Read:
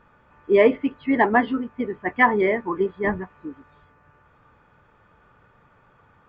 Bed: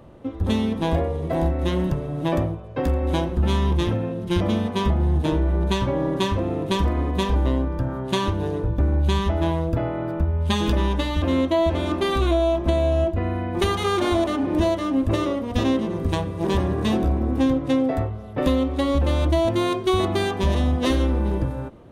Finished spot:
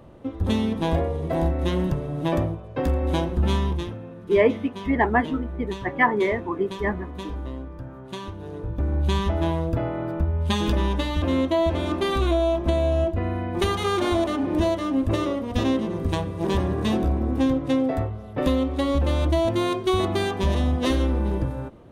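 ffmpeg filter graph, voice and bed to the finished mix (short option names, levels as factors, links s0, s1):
-filter_complex "[0:a]adelay=3800,volume=0.75[s0];[1:a]volume=2.99,afade=t=out:st=3.53:d=0.4:silence=0.281838,afade=t=in:st=8.42:d=0.73:silence=0.298538[s1];[s0][s1]amix=inputs=2:normalize=0"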